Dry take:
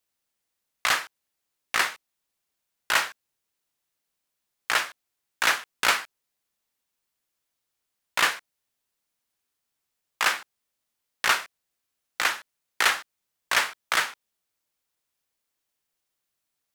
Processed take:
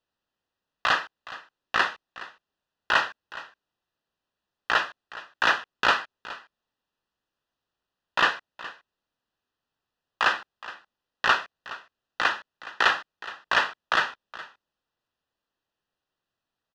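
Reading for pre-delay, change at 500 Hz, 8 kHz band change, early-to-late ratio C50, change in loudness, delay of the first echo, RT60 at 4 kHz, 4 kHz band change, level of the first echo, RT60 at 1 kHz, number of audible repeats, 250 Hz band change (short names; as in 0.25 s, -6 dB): none, +3.5 dB, -13.5 dB, none, 0.0 dB, 0.418 s, none, -1.5 dB, -17.0 dB, none, 1, +4.0 dB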